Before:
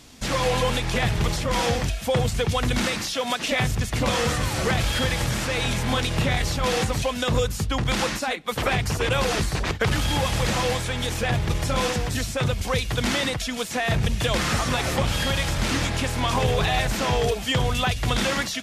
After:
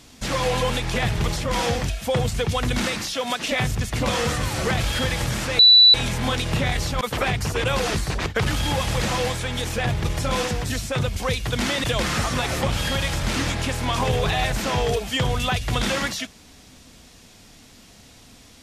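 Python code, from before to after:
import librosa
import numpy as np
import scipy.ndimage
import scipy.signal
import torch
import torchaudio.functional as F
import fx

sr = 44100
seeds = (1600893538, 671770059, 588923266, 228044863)

y = fx.edit(x, sr, fx.insert_tone(at_s=5.59, length_s=0.35, hz=3960.0, db=-8.0),
    fx.cut(start_s=6.66, length_s=1.8),
    fx.cut(start_s=13.29, length_s=0.9), tone=tone)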